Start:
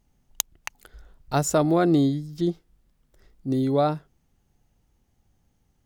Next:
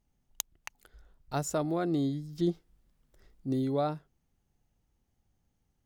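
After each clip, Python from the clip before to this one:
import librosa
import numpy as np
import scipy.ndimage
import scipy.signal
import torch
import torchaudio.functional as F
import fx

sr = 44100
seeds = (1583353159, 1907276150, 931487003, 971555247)

y = fx.rider(x, sr, range_db=10, speed_s=0.5)
y = y * 10.0 ** (-7.0 / 20.0)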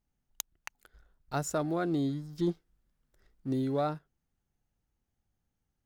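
y = fx.leveller(x, sr, passes=1)
y = fx.peak_eq(y, sr, hz=1500.0, db=4.5, octaves=0.61)
y = y * 10.0 ** (-4.5 / 20.0)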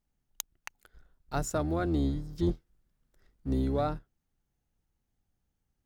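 y = fx.octave_divider(x, sr, octaves=2, level_db=0.0)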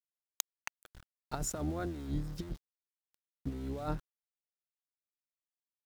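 y = fx.over_compress(x, sr, threshold_db=-32.0, ratio=-0.5)
y = np.where(np.abs(y) >= 10.0 ** (-46.0 / 20.0), y, 0.0)
y = y * 10.0 ** (-3.0 / 20.0)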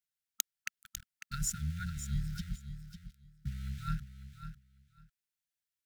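y = fx.brickwall_bandstop(x, sr, low_hz=220.0, high_hz=1300.0)
y = fx.echo_feedback(y, sr, ms=549, feedback_pct=17, wet_db=-10.5)
y = y * 10.0 ** (3.0 / 20.0)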